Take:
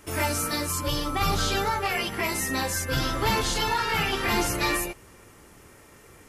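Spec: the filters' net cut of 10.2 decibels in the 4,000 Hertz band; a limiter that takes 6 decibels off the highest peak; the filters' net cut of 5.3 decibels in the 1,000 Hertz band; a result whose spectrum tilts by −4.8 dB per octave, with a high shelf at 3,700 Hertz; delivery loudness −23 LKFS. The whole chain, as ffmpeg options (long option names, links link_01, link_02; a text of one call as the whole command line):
ffmpeg -i in.wav -af "equalizer=frequency=1000:width_type=o:gain=-5.5,highshelf=frequency=3700:gain=-9,equalizer=frequency=4000:width_type=o:gain=-7.5,volume=8dB,alimiter=limit=-12.5dB:level=0:latency=1" out.wav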